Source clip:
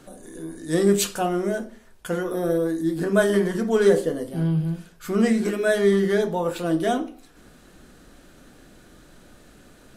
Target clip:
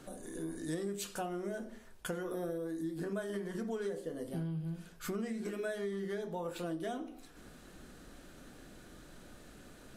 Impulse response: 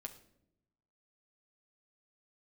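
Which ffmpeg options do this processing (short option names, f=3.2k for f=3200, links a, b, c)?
-af "acompressor=threshold=-31dB:ratio=12,volume=-4dB"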